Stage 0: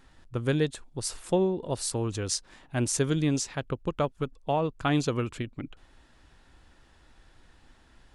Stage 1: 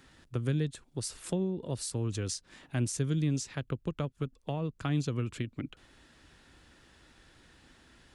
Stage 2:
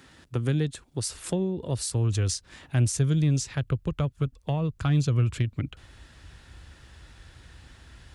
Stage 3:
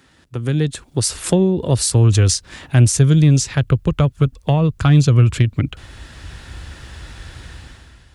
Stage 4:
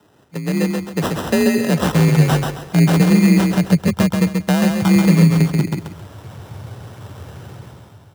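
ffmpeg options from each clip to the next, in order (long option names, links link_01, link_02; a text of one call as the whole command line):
ffmpeg -i in.wav -filter_complex "[0:a]highpass=frequency=120:poles=1,equalizer=frequency=840:width=1.2:gain=-6,acrossover=split=190[link_01][link_02];[link_02]acompressor=threshold=-40dB:ratio=4[link_03];[link_01][link_03]amix=inputs=2:normalize=0,volume=3.5dB" out.wav
ffmpeg -i in.wav -af "asubboost=boost=7:cutoff=93,asoftclip=type=tanh:threshold=-17.5dB,highpass=59,volume=6dB" out.wav
ffmpeg -i in.wav -af "dynaudnorm=framelen=130:gausssize=9:maxgain=14dB" out.wav
ffmpeg -i in.wav -filter_complex "[0:a]acrusher=samples=20:mix=1:aa=0.000001,asplit=2[link_01][link_02];[link_02]aecho=0:1:134|268|402|536:0.631|0.189|0.0568|0.017[link_03];[link_01][link_03]amix=inputs=2:normalize=0,afreqshift=45,volume=-1.5dB" out.wav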